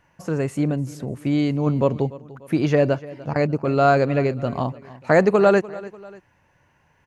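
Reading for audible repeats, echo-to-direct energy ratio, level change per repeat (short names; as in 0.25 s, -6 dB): 2, -18.0 dB, -6.5 dB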